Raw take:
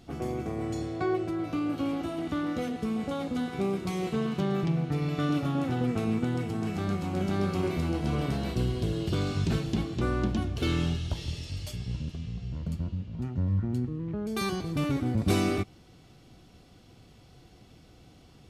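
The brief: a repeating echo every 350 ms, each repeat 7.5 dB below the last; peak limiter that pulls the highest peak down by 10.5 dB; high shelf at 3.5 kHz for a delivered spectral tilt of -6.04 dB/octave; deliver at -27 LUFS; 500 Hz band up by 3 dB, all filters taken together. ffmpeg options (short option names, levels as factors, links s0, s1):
-af "equalizer=f=500:t=o:g=4,highshelf=f=3500:g=8,alimiter=limit=0.0841:level=0:latency=1,aecho=1:1:350|700|1050|1400|1750:0.422|0.177|0.0744|0.0312|0.0131,volume=1.5"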